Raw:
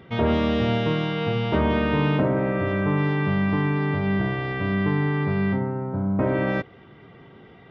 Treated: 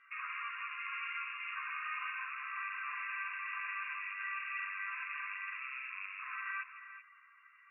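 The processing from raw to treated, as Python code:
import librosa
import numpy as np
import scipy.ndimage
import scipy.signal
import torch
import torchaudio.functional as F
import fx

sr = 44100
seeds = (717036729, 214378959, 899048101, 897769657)

y = fx.rattle_buzz(x, sr, strikes_db=-34.0, level_db=-23.0)
y = 10.0 ** (-22.0 / 20.0) * np.tanh(y / 10.0 ** (-22.0 / 20.0))
y = fx.brickwall_bandpass(y, sr, low_hz=1000.0, high_hz=2800.0)
y = y + 10.0 ** (-11.0 / 20.0) * np.pad(y, (int(379 * sr / 1000.0), 0))[:len(y)]
y = fx.ensemble(y, sr)
y = F.gain(torch.from_numpy(y), -2.5).numpy()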